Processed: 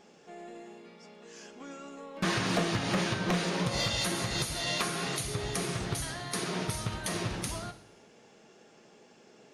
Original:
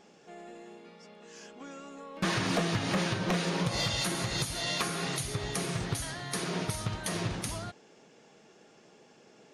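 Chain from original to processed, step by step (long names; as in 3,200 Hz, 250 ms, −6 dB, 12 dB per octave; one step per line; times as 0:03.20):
coupled-rooms reverb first 0.82 s, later 2.4 s, from −25 dB, DRR 9 dB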